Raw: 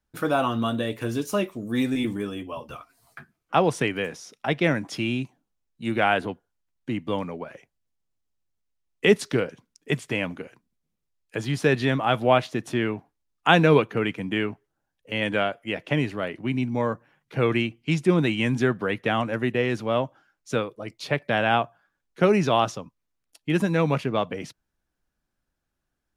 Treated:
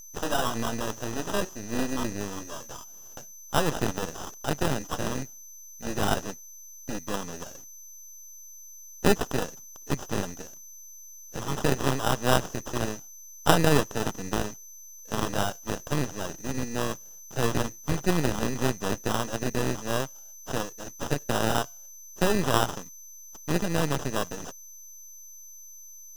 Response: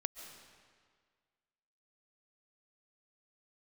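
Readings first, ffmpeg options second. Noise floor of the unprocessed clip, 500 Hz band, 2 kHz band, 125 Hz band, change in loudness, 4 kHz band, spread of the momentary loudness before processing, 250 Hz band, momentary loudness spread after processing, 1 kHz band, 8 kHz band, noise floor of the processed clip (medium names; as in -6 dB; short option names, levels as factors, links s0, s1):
-80 dBFS, -5.5 dB, -6.5 dB, -3.5 dB, -4.5 dB, -2.0 dB, 14 LU, -5.0 dB, 19 LU, -3.5 dB, +10.5 dB, -46 dBFS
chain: -af "highshelf=f=2300:g=12,acrusher=samples=20:mix=1:aa=0.000001,aeval=exprs='val(0)+0.0126*sin(2*PI*6100*n/s)':c=same,aeval=exprs='max(val(0),0)':c=same,volume=0.841"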